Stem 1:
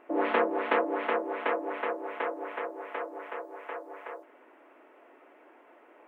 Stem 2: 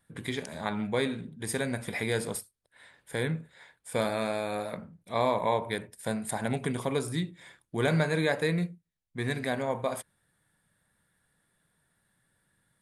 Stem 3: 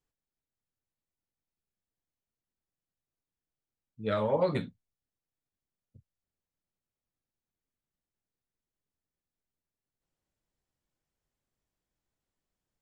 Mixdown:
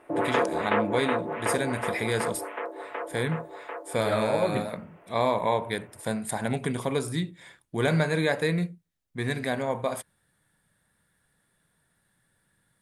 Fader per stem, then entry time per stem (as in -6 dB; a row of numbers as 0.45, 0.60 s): +1.0, +2.0, +1.0 dB; 0.00, 0.00, 0.00 s